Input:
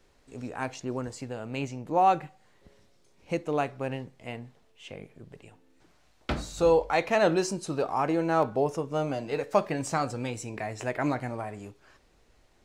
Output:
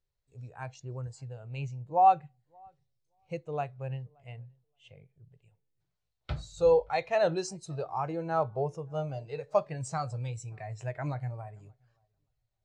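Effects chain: graphic EQ 125/250/4000/8000 Hz +9/-12/+5/+5 dB; darkening echo 0.575 s, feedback 22%, low-pass 1900 Hz, level -21 dB; spectral expander 1.5:1

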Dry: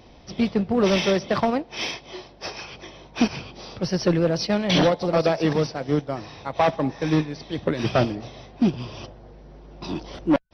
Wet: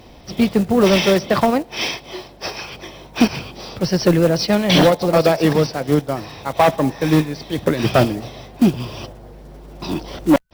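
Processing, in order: block floating point 5-bit; gain +6 dB

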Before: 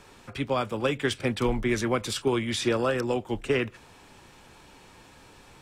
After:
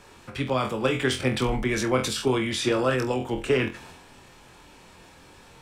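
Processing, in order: flutter echo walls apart 4 m, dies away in 0.23 s; transient shaper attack +2 dB, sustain +6 dB

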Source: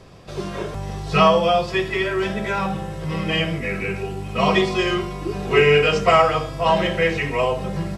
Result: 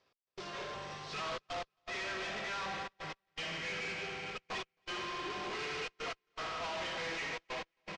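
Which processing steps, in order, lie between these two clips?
overloaded stage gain 19 dB; HPF 1200 Hz 6 dB/oct; spring tank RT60 3.8 s, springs 54 ms, chirp 45 ms, DRR 4.5 dB; step gate "x..xxxxxxxx." 120 bpm -60 dB; tube stage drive 41 dB, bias 0.5; LPF 5900 Hz 24 dB/oct; feedback echo 0.27 s, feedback 53%, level -17 dB; upward expander 2.5:1, over -58 dBFS; gain +4 dB

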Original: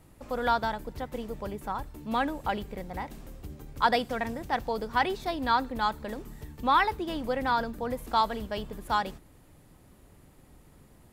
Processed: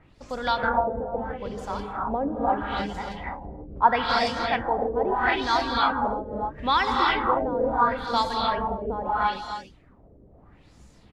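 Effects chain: bell 6800 Hz +2.5 dB 1.7 oct; echo 0.273 s -6 dB; reverb removal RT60 0.81 s; non-linear reverb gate 0.35 s rising, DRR -0.5 dB; LFO low-pass sine 0.76 Hz 460–6700 Hz; 0.69–1.58 high shelf 3500 Hz -12 dB

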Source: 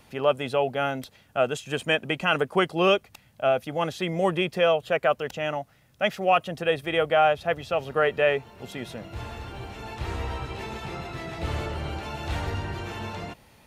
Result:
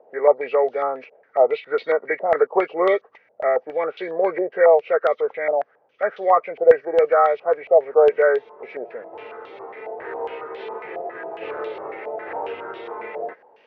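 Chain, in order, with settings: nonlinear frequency compression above 1100 Hz 1.5:1; resonant high-pass 450 Hz, resonance Q 4.9; stepped low-pass 7.3 Hz 680–3500 Hz; gain -4.5 dB

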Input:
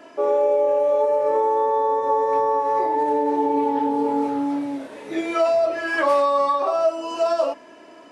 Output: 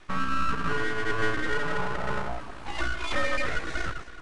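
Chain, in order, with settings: echo with dull and thin repeats by turns 0.212 s, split 940 Hz, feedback 60%, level -7 dB; frequency shift +68 Hz; granular stretch 0.52×, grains 34 ms; full-wave rectifier; downsampling 22050 Hz; gain -4.5 dB

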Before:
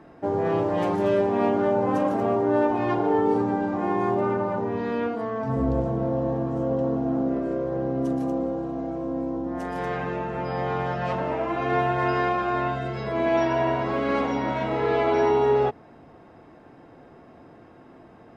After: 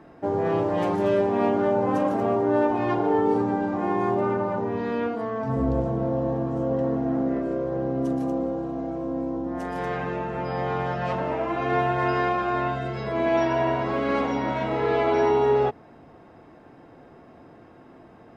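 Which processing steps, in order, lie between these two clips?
6.74–7.42 bell 1900 Hz +7.5 dB 0.44 oct

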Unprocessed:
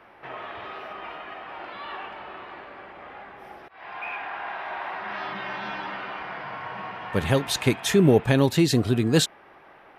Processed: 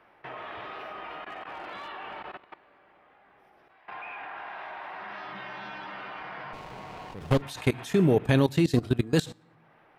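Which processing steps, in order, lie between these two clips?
shoebox room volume 3200 m³, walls furnished, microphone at 0.47 m; 1.29–1.88 overloaded stage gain 31.5 dB; 3.86–4.38 air absorption 110 m; level quantiser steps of 20 dB; 6.53–7.42 running maximum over 17 samples

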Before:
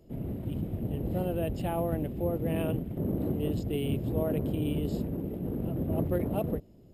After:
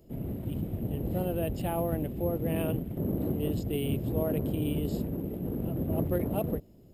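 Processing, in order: high shelf 9500 Hz +9 dB

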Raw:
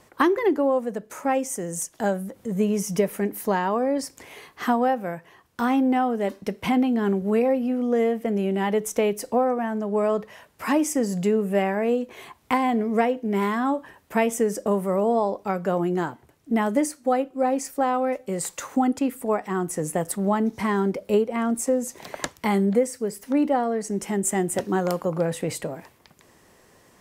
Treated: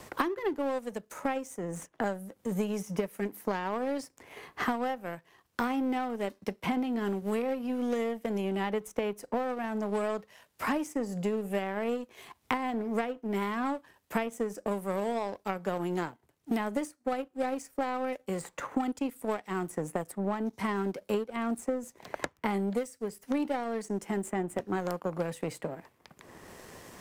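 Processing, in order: power-law curve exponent 1.4; three-band squash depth 100%; gain -5.5 dB

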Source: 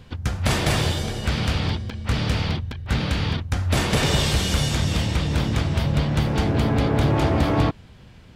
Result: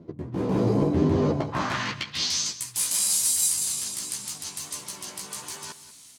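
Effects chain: chorus 0.65 Hz, delay 16.5 ms, depth 5.8 ms; reverse; compressor 6:1, threshold -32 dBFS, peak gain reduction 14 dB; reverse; bell 750 Hz +7 dB 0.23 oct; band-pass sweep 290 Hz -> 6800 Hz, 1.54–3.48; tone controls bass +8 dB, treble +7 dB; echo 0.253 s -15 dB; speed mistake 33 rpm record played at 45 rpm; AGC gain up to 13 dB; gain +6.5 dB

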